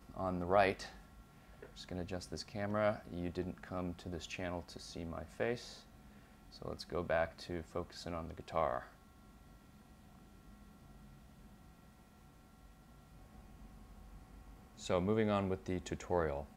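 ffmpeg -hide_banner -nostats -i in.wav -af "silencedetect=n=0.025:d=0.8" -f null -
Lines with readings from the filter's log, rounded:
silence_start: 0.72
silence_end: 1.92 | silence_duration: 1.20
silence_start: 5.54
silence_end: 6.65 | silence_duration: 1.12
silence_start: 8.78
silence_end: 14.90 | silence_duration: 6.12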